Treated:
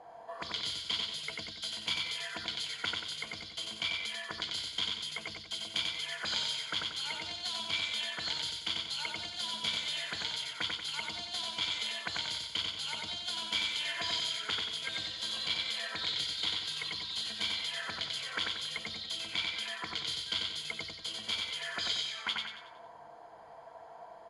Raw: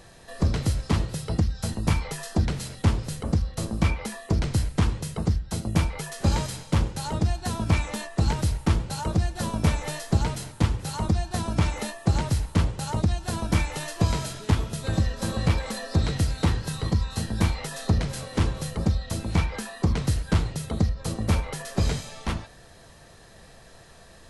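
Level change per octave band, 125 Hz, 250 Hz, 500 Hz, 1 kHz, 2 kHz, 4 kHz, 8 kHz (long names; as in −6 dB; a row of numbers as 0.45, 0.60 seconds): −32.0, −24.5, −15.5, −10.0, −1.0, +6.5, −7.5 decibels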